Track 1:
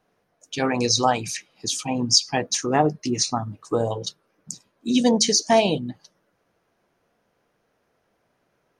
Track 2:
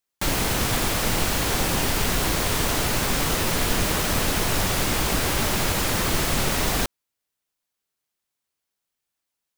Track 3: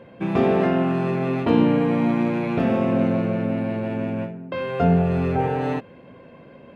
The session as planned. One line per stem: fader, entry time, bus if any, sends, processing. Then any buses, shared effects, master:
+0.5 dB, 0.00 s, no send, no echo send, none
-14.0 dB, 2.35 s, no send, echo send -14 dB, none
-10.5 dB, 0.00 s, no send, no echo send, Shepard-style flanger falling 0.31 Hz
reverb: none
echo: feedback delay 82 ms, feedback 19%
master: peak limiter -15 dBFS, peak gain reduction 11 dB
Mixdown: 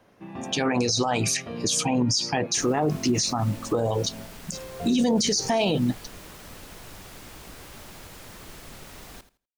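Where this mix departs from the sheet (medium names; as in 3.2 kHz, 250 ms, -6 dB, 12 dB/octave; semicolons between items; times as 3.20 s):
stem 1 +0.5 dB -> +8.0 dB; stem 2 -14.0 dB -> -21.0 dB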